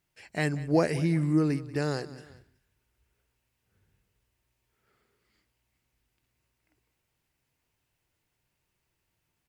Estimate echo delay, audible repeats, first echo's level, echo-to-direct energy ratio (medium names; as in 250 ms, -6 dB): 187 ms, 2, -18.0 dB, -17.0 dB